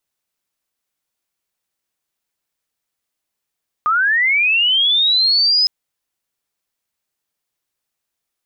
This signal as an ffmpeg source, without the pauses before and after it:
ffmpeg -f lavfi -i "aevalsrc='pow(10,(-12.5+1.5*t/1.81)/20)*sin(2*PI*(1200*t+3900*t*t/(2*1.81)))':duration=1.81:sample_rate=44100" out.wav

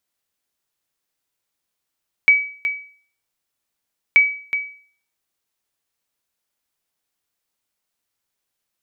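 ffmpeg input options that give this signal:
ffmpeg -f lavfi -i "aevalsrc='0.562*(sin(2*PI*2280*mod(t,1.88))*exp(-6.91*mod(t,1.88)/0.47)+0.316*sin(2*PI*2280*max(mod(t,1.88)-0.37,0))*exp(-6.91*max(mod(t,1.88)-0.37,0)/0.47))':duration=3.76:sample_rate=44100" out.wav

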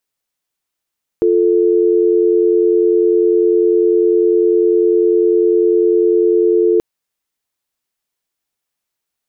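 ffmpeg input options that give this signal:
ffmpeg -f lavfi -i "aevalsrc='0.251*(sin(2*PI*350*t)+sin(2*PI*440*t))':duration=5.58:sample_rate=44100" out.wav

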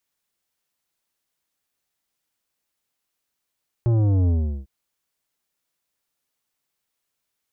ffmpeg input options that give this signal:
ffmpeg -f lavfi -i "aevalsrc='0.141*clip((0.8-t)/0.38,0,1)*tanh(3.55*sin(2*PI*120*0.8/log(65/120)*(exp(log(65/120)*t/0.8)-1)))/tanh(3.55)':duration=0.8:sample_rate=44100" out.wav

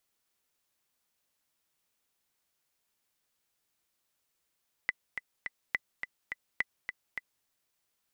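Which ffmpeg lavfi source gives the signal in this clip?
ffmpeg -f lavfi -i "aevalsrc='pow(10,(-15-7.5*gte(mod(t,3*60/210),60/210))/20)*sin(2*PI*2000*mod(t,60/210))*exp(-6.91*mod(t,60/210)/0.03)':duration=2.57:sample_rate=44100" out.wav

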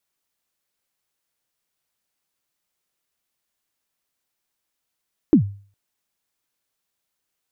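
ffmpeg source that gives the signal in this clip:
ffmpeg -f lavfi -i "aevalsrc='0.501*pow(10,-3*t/0.42)*sin(2*PI*(350*0.097/log(100/350)*(exp(log(100/350)*min(t,0.097)/0.097)-1)+100*max(t-0.097,0)))':duration=0.41:sample_rate=44100" out.wav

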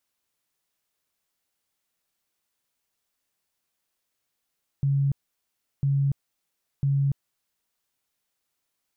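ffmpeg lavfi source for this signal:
ffmpeg -f lavfi -i "aevalsrc='0.106*sin(2*PI*139*mod(t,1))*lt(mod(t,1),40/139)':duration=3:sample_rate=44100" out.wav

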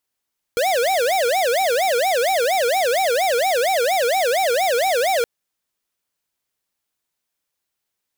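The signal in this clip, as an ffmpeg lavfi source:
ffmpeg -f lavfi -i "aevalsrc='0.119*(2*lt(mod((622*t-157/(2*PI*4.3)*sin(2*PI*4.3*t)),1),0.5)-1)':duration=4.67:sample_rate=44100" out.wav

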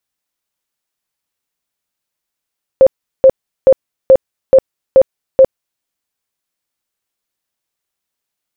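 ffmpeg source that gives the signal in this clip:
ffmpeg -f lavfi -i "aevalsrc='0.841*sin(2*PI*530*mod(t,0.43))*lt(mod(t,0.43),30/530)':duration=3.01:sample_rate=44100" out.wav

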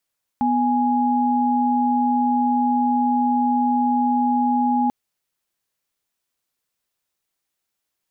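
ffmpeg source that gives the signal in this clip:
ffmpeg -f lavfi -i "aevalsrc='0.112*(sin(2*PI*246.94*t)+sin(2*PI*830.61*t))':duration=4.49:sample_rate=44100" out.wav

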